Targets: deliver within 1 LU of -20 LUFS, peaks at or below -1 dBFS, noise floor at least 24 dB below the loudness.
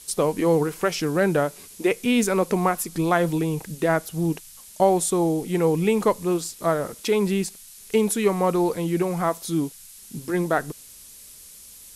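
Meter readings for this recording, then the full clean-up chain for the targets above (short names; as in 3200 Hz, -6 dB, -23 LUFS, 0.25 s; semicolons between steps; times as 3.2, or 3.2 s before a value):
noise floor -46 dBFS; noise floor target -48 dBFS; loudness -23.5 LUFS; peak -7.5 dBFS; loudness target -20.0 LUFS
-> noise print and reduce 6 dB; gain +3.5 dB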